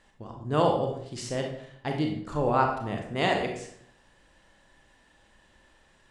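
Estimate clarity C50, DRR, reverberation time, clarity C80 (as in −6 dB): 5.0 dB, 2.0 dB, 0.65 s, 8.5 dB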